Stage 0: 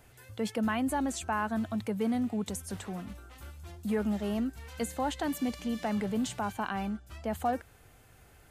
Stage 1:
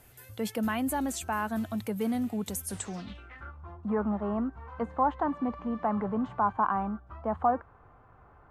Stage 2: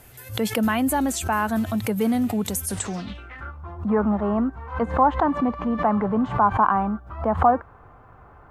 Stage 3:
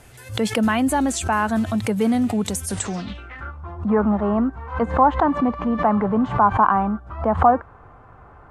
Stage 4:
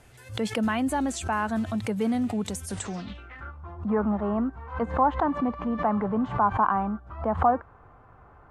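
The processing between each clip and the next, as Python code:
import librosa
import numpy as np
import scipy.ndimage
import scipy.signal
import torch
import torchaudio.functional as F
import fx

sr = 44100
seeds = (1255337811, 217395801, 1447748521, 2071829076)

y1 = fx.filter_sweep_lowpass(x, sr, from_hz=13000.0, to_hz=1100.0, start_s=2.63, end_s=3.55, q=4.3)
y2 = fx.pre_swell(y1, sr, db_per_s=140.0)
y2 = y2 * 10.0 ** (8.0 / 20.0)
y3 = scipy.signal.sosfilt(scipy.signal.butter(4, 10000.0, 'lowpass', fs=sr, output='sos'), y2)
y3 = y3 * 10.0 ** (2.5 / 20.0)
y4 = fx.high_shelf(y3, sr, hz=11000.0, db=-8.5)
y4 = y4 * 10.0 ** (-6.5 / 20.0)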